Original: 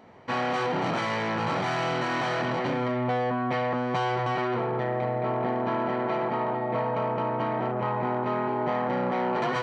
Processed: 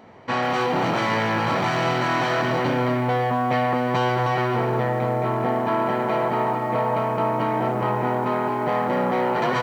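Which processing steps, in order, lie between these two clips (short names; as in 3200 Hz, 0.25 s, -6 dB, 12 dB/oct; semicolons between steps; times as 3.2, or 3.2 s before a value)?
resonator 110 Hz, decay 0.17 s, harmonics all, mix 30%; on a send: feedback echo 0.233 s, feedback 44%, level -10.5 dB; on the sum: lo-fi delay 0.144 s, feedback 55%, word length 8-bit, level -14 dB; gain +6.5 dB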